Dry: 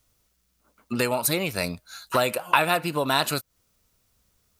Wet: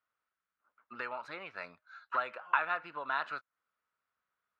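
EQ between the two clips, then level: band-pass filter 1.4 kHz, Q 2.6; distance through air 170 m; -3.0 dB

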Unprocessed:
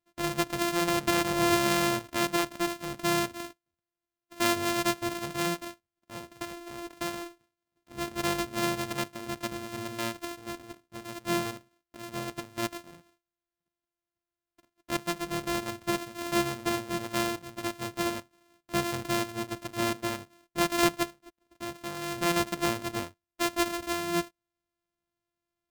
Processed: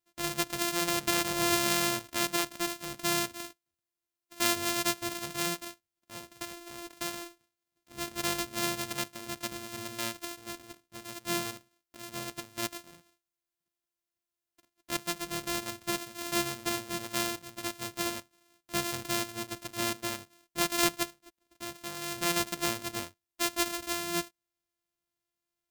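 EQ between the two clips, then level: treble shelf 2.5 kHz +9.5 dB; -5.5 dB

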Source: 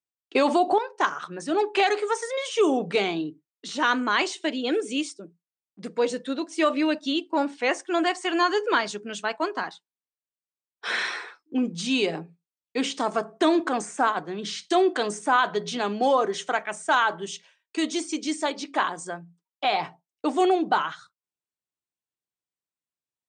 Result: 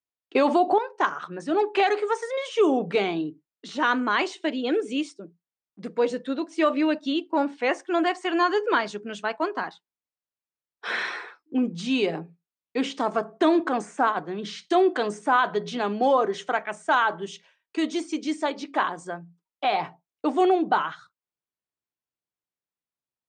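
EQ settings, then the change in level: low-pass 2.4 kHz 6 dB/octave; +1.0 dB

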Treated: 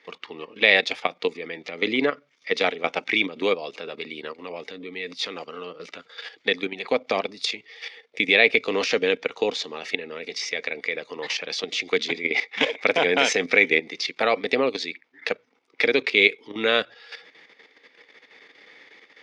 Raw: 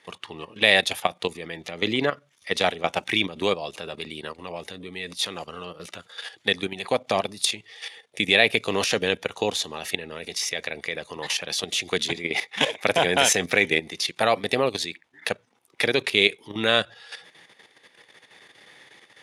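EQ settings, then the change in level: cabinet simulation 190–5900 Hz, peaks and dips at 270 Hz +8 dB, 460 Hz +8 dB, 1.3 kHz +4 dB, 2.2 kHz +9 dB, 4.9 kHz +4 dB; -3.5 dB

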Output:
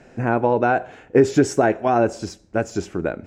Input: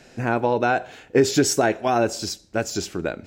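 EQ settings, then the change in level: low-pass 6.1 kHz 12 dB/octave; peaking EQ 4.2 kHz -13.5 dB 1.4 oct; +3.0 dB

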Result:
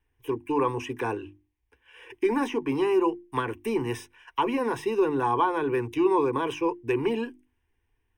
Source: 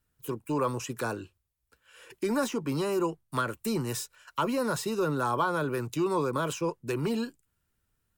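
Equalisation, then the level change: Savitzky-Golay filter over 15 samples; hum notches 50/100/150/200/250/300/350 Hz; static phaser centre 890 Hz, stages 8; +7.0 dB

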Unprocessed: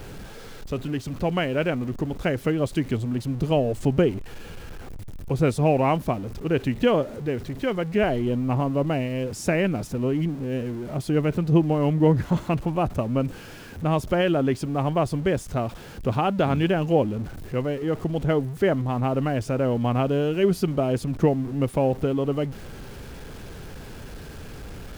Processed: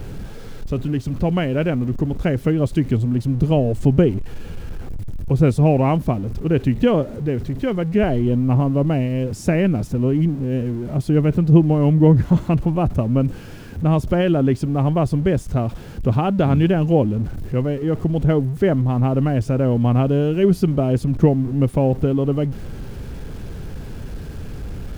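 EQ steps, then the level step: bass shelf 340 Hz +11 dB; -1.0 dB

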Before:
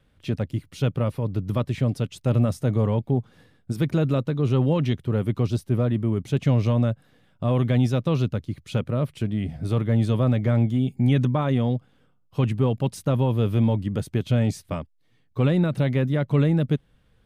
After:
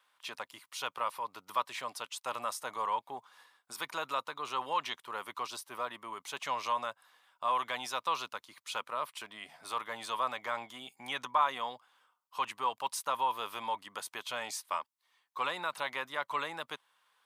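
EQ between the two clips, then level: resonant high-pass 1 kHz, resonance Q 4.9; treble shelf 2.7 kHz +10 dB; -7.0 dB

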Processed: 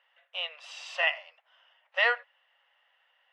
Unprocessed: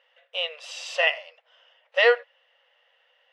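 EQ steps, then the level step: high-pass 760 Hz 24 dB/octave; treble shelf 3.1 kHz -11.5 dB; 0.0 dB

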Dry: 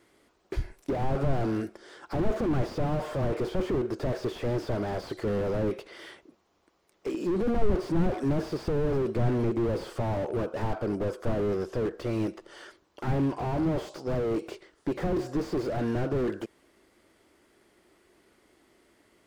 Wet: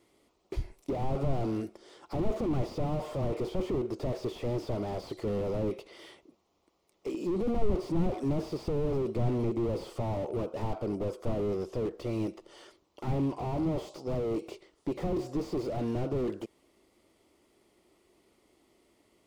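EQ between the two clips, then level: peaking EQ 1.6 kHz -13 dB 0.4 oct; -3.0 dB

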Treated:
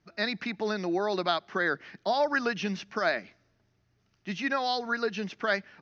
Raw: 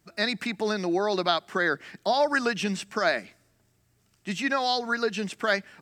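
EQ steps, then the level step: Chebyshev low-pass 6.3 kHz, order 6; distance through air 69 m; -2.0 dB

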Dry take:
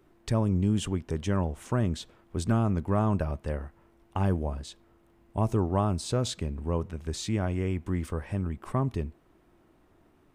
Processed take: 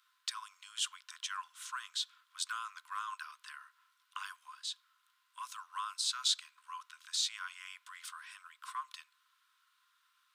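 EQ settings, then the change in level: rippled Chebyshev high-pass 1 kHz, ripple 9 dB; treble shelf 2.5 kHz +8.5 dB; +1.0 dB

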